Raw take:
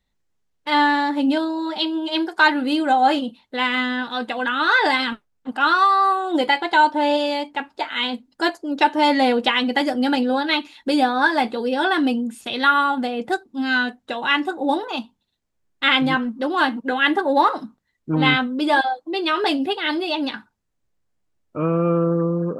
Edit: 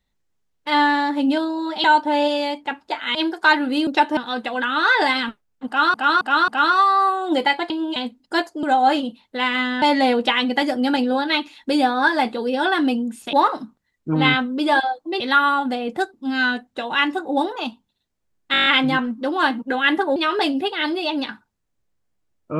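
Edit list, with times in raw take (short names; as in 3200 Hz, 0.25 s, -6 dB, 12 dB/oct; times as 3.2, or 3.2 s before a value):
1.84–2.1 swap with 6.73–8.04
2.82–4.01 swap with 8.71–9.01
5.51–5.78 loop, 4 plays
15.84 stutter 0.02 s, 8 plays
17.34–19.21 move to 12.52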